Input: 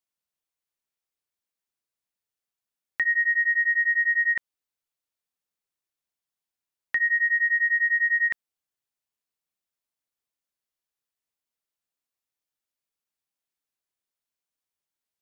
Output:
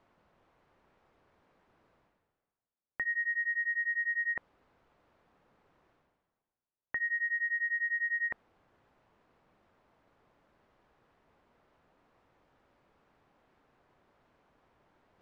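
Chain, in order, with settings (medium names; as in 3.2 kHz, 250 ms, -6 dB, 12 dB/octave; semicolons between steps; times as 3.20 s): low-pass 1.1 kHz 12 dB/octave; reverse; upward compressor, threshold -44 dBFS; reverse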